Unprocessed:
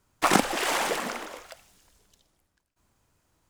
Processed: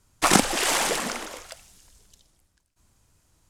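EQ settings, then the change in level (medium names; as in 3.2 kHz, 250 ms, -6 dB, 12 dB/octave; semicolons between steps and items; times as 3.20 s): low-pass 11 kHz 12 dB/octave; bass shelf 160 Hz +9.5 dB; treble shelf 4 kHz +11 dB; 0.0 dB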